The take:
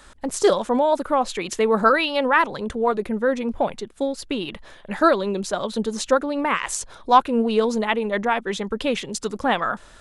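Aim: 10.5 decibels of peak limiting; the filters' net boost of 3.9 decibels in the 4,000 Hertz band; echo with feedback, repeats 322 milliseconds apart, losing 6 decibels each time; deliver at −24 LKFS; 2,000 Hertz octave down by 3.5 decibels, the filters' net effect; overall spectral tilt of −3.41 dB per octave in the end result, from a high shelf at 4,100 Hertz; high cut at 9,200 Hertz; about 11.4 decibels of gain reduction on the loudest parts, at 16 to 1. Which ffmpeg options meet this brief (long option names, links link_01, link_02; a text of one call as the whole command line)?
ffmpeg -i in.wav -af "lowpass=9200,equalizer=frequency=2000:width_type=o:gain=-7,equalizer=frequency=4000:width_type=o:gain=3.5,highshelf=frequency=4100:gain=7.5,acompressor=threshold=-22dB:ratio=16,alimiter=limit=-19.5dB:level=0:latency=1,aecho=1:1:322|644|966|1288|1610|1932:0.501|0.251|0.125|0.0626|0.0313|0.0157,volume=4.5dB" out.wav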